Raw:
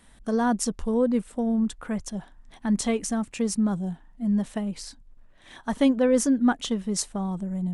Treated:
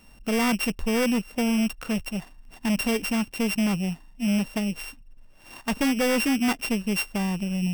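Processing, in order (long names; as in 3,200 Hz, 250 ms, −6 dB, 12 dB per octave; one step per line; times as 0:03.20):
samples sorted by size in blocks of 16 samples
hard clipping −22.5 dBFS, distortion −10 dB
level +2.5 dB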